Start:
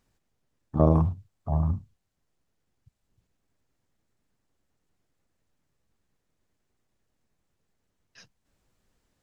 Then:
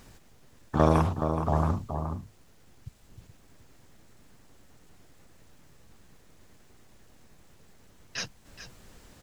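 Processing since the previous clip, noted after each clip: delay 423 ms -14 dB; spectrum-flattening compressor 2:1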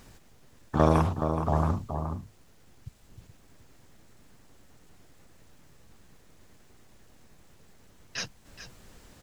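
no audible change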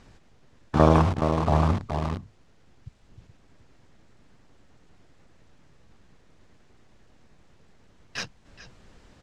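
in parallel at -4 dB: bit crusher 5-bit; on the sum: distance through air 91 m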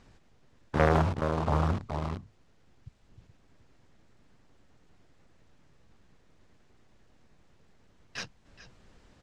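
loudspeaker Doppler distortion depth 0.78 ms; trim -5 dB

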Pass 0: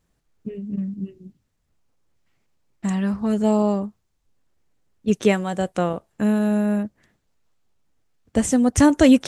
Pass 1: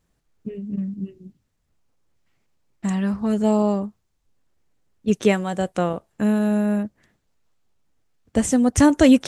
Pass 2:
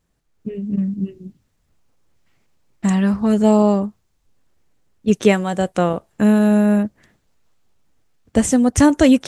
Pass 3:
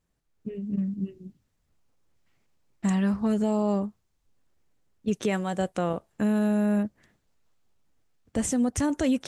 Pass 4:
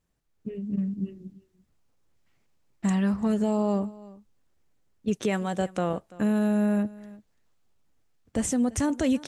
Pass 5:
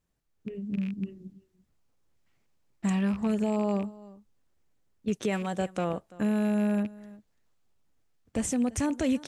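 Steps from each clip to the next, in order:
no audible change
level rider gain up to 6.5 dB
peak limiter -9.5 dBFS, peak gain reduction 7 dB; trim -7.5 dB
delay 338 ms -20.5 dB
rattle on loud lows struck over -30 dBFS, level -32 dBFS; trim -2.5 dB

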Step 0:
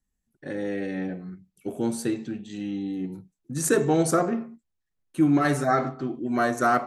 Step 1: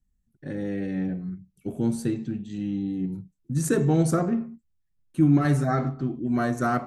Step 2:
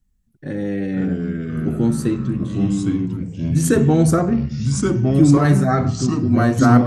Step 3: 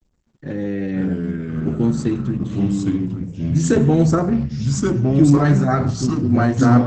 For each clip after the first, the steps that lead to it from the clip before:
tone controls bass +14 dB, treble 0 dB; trim -5 dB
ever faster or slower copies 423 ms, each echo -3 st, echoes 3; trim +6.5 dB
bit crusher 11-bit; Opus 12 kbps 48 kHz

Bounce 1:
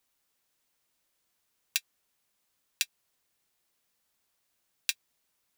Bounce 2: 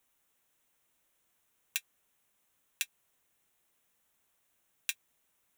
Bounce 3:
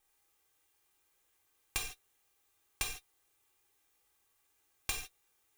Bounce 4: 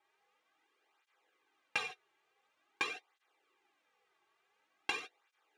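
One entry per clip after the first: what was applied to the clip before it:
peaking EQ 4.7 kHz -12 dB 0.41 oct; peak limiter -10 dBFS, peak gain reduction 5.5 dB; trim +2.5 dB
comb filter that takes the minimum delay 2.5 ms; gated-style reverb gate 180 ms falling, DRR -1.5 dB; trim -1.5 dB
band-pass 320–2600 Hz; cancelling through-zero flanger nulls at 0.47 Hz, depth 4.2 ms; trim +9.5 dB

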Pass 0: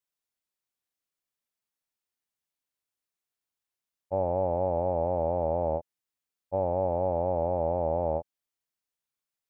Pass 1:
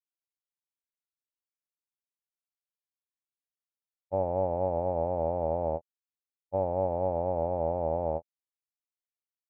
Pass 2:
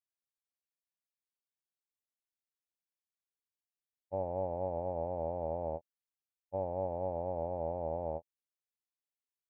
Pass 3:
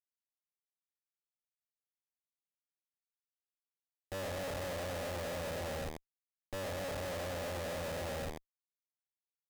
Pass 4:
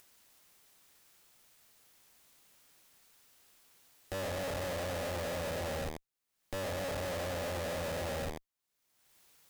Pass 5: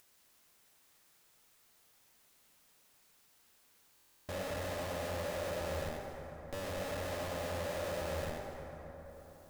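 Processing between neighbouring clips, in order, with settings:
upward expansion 2.5:1, over -37 dBFS
peaking EQ 1.3 kHz -8.5 dB 0.22 oct; trim -7 dB
on a send: feedback delay 103 ms, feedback 33%, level -6 dB; on the sum: Schmitt trigger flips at -49 dBFS; trim +1 dB
upward compressor, threshold -43 dBFS; trim +2.5 dB
reverberation RT60 4.2 s, pre-delay 53 ms, DRR 2 dB; buffer glitch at 3.94 s, samples 1024, times 14; trim -4 dB

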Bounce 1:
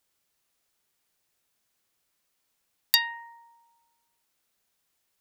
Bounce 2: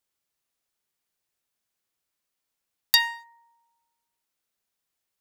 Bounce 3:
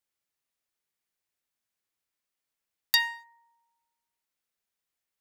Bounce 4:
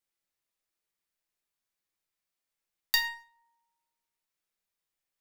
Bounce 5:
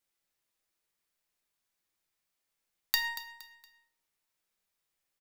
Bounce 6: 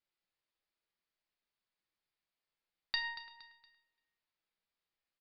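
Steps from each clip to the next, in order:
waveshaping leveller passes 2; trim -3 dB
peaking EQ 2 kHz +3 dB; trim -5 dB
reverberation RT60 0.35 s, pre-delay 6 ms, DRR 3.5 dB; trim -3 dB
compression 6:1, threshold -29 dBFS, peak gain reduction 8.5 dB; feedback delay 233 ms, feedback 36%, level -14 dB; trim +3.5 dB
speakerphone echo 340 ms, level -20 dB; resampled via 11.025 kHz; trim -5 dB

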